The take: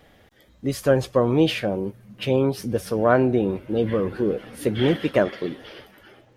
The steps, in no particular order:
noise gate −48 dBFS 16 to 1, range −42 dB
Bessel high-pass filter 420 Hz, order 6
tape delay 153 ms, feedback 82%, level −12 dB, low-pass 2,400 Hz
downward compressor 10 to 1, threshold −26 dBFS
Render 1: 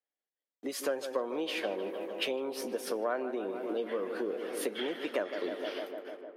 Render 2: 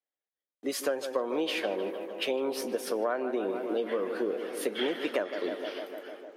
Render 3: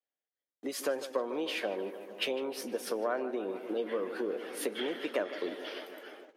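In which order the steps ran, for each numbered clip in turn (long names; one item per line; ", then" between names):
noise gate, then tape delay, then downward compressor, then Bessel high-pass filter
tape delay, then noise gate, then Bessel high-pass filter, then downward compressor
downward compressor, then tape delay, then noise gate, then Bessel high-pass filter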